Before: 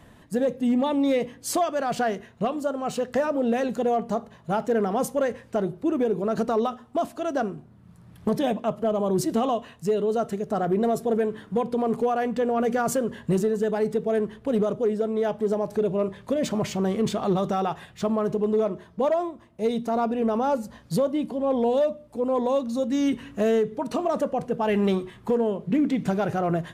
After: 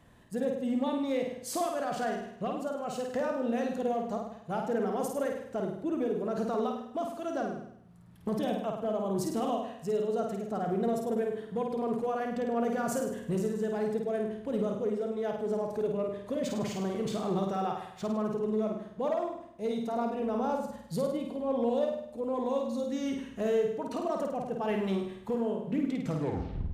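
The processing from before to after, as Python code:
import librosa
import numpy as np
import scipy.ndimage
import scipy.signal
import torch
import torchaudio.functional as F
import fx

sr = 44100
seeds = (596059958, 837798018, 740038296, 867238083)

y = fx.tape_stop_end(x, sr, length_s=0.74)
y = fx.room_flutter(y, sr, wall_m=8.8, rt60_s=0.71)
y = y * 10.0 ** (-9.0 / 20.0)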